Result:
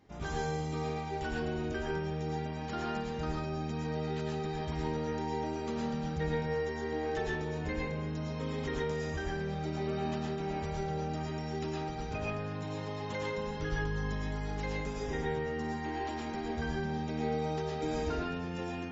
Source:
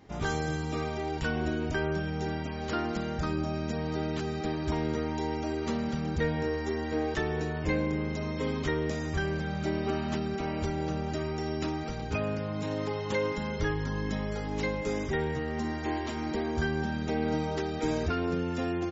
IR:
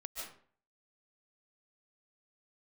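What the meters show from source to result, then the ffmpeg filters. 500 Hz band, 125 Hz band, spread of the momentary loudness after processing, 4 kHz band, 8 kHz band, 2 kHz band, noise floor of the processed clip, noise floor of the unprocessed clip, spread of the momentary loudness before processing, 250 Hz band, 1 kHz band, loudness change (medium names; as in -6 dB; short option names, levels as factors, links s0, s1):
-3.5 dB, -3.5 dB, 3 LU, -4.0 dB, no reading, -4.5 dB, -38 dBFS, -35 dBFS, 3 LU, -5.5 dB, -1.5 dB, -4.0 dB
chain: -filter_complex "[1:a]atrim=start_sample=2205,asetrate=57330,aresample=44100[s0];[0:a][s0]afir=irnorm=-1:irlink=0"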